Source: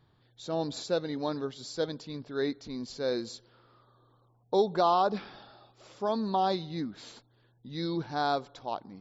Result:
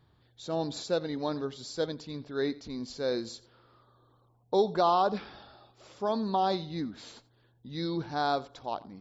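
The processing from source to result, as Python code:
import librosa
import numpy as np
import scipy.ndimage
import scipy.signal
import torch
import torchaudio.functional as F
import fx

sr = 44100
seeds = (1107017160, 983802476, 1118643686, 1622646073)

y = fx.peak_eq(x, sr, hz=69.0, db=12.0, octaves=0.31)
y = y + 10.0 ** (-20.0 / 20.0) * np.pad(y, (int(87 * sr / 1000.0), 0))[:len(y)]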